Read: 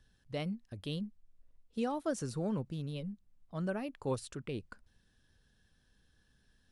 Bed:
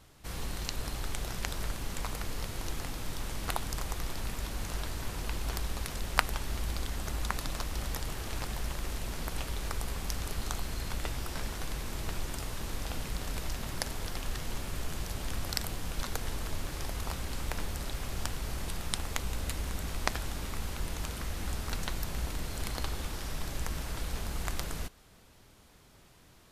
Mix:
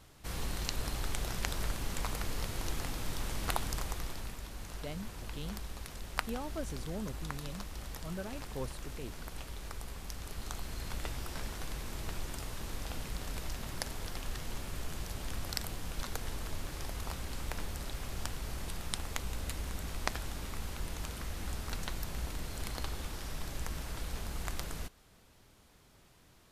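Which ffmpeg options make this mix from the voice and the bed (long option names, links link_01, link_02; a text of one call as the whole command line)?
ffmpeg -i stem1.wav -i stem2.wav -filter_complex "[0:a]adelay=4500,volume=-5.5dB[link_01];[1:a]volume=4.5dB,afade=type=out:start_time=3.63:duration=0.78:silence=0.398107,afade=type=in:start_time=10.16:duration=0.81:silence=0.595662[link_02];[link_01][link_02]amix=inputs=2:normalize=0" out.wav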